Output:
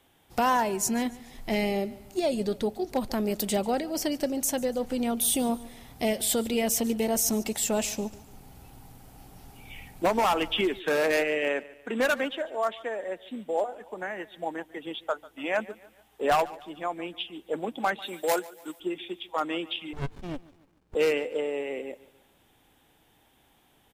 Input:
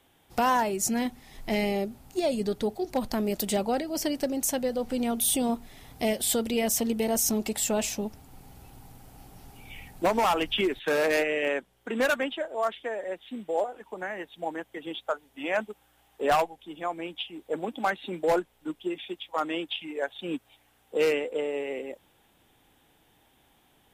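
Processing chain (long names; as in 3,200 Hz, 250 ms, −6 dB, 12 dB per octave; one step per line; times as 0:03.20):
0:18.02–0:18.80: RIAA equalisation recording
repeating echo 144 ms, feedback 43%, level −20 dB
0:19.93–0:20.95: windowed peak hold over 65 samples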